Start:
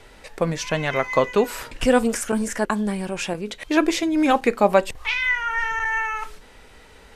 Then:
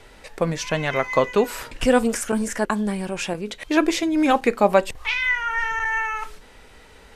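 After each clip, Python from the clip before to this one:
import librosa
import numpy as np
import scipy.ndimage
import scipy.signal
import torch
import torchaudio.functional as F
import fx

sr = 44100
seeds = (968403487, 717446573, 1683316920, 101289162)

y = x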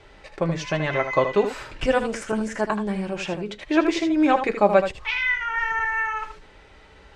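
y = fx.air_absorb(x, sr, metres=99.0)
y = fx.notch_comb(y, sr, f0_hz=240.0)
y = y + 10.0 ** (-9.0 / 20.0) * np.pad(y, (int(78 * sr / 1000.0), 0))[:len(y)]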